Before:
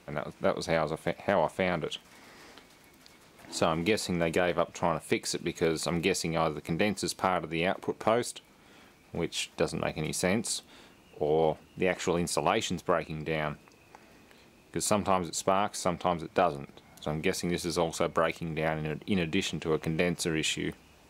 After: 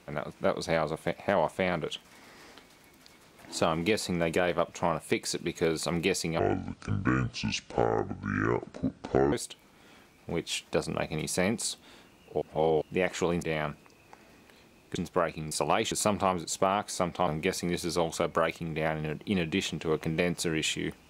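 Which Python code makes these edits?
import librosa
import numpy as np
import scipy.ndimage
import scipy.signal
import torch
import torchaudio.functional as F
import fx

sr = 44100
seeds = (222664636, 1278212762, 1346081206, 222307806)

y = fx.edit(x, sr, fx.speed_span(start_s=6.39, length_s=1.79, speed=0.61),
    fx.reverse_span(start_s=11.27, length_s=0.4),
    fx.swap(start_s=12.28, length_s=0.4, other_s=13.24, other_length_s=1.53),
    fx.cut(start_s=16.13, length_s=0.95), tone=tone)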